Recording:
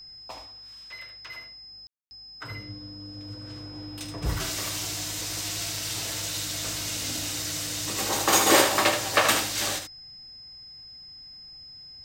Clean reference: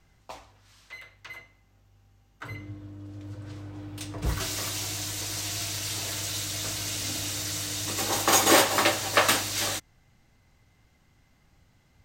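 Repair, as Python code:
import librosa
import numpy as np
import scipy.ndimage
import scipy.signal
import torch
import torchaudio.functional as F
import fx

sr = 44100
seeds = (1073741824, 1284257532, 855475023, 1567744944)

y = fx.notch(x, sr, hz=5100.0, q=30.0)
y = fx.fix_ambience(y, sr, seeds[0], print_start_s=10.58, print_end_s=11.08, start_s=1.87, end_s=2.11)
y = fx.fix_echo_inverse(y, sr, delay_ms=76, level_db=-7.5)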